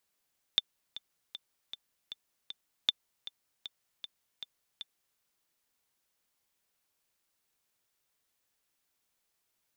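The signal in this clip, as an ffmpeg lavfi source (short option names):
-f lavfi -i "aevalsrc='pow(10,(-11-16.5*gte(mod(t,6*60/156),60/156))/20)*sin(2*PI*3550*mod(t,60/156))*exp(-6.91*mod(t,60/156)/0.03)':d=4.61:s=44100"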